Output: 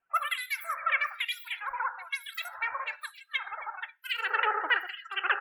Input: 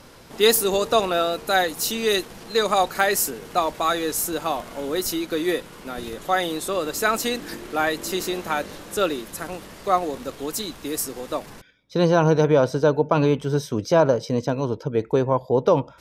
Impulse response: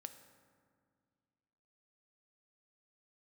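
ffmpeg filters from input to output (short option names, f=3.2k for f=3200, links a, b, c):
-filter_complex "[0:a]bass=f=250:g=-8,treble=f=4k:g=4,asetrate=130536,aresample=44100,asplit=5[a][b][c][d][e];[b]adelay=269,afreqshift=99,volume=-17dB[f];[c]adelay=538,afreqshift=198,volume=-22.8dB[g];[d]adelay=807,afreqshift=297,volume=-28.7dB[h];[e]adelay=1076,afreqshift=396,volume=-34.5dB[i];[a][f][g][h][i]amix=inputs=5:normalize=0[j];[1:a]atrim=start_sample=2205[k];[j][k]afir=irnorm=-1:irlink=0,acrossover=split=2500[l][m];[l]aeval=exprs='val(0)*(1-1/2+1/2*cos(2*PI*1.1*n/s))':c=same[n];[m]aeval=exprs='val(0)*(1-1/2-1/2*cos(2*PI*1.1*n/s))':c=same[o];[n][o]amix=inputs=2:normalize=0,bandreject=f=50:t=h:w=6,bandreject=f=100:t=h:w=6,bandreject=f=150:t=h:w=6,bandreject=f=200:t=h:w=6,afftdn=nr=30:nf=-45,highshelf=f=3.6k:t=q:w=3:g=-9.5"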